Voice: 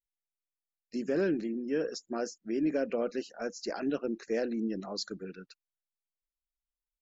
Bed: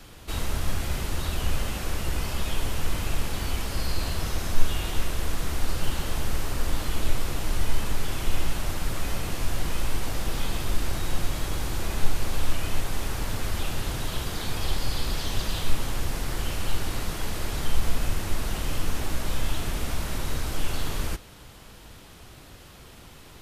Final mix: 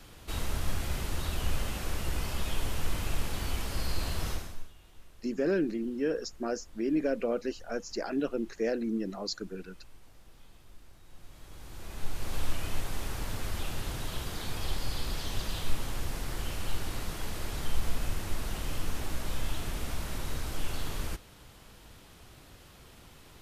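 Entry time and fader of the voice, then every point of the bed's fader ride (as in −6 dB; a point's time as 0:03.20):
4.30 s, +1.0 dB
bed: 0:04.32 −4.5 dB
0:04.73 −28 dB
0:11.04 −28 dB
0:12.36 −6 dB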